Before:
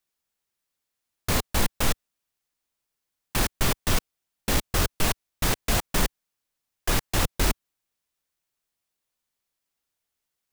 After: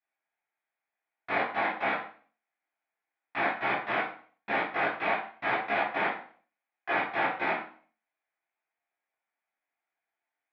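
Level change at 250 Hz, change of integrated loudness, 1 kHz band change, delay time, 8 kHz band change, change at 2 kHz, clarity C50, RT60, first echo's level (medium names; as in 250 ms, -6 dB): -7.5 dB, -3.0 dB, +3.5 dB, no echo, under -40 dB, +3.0 dB, 5.0 dB, 0.45 s, no echo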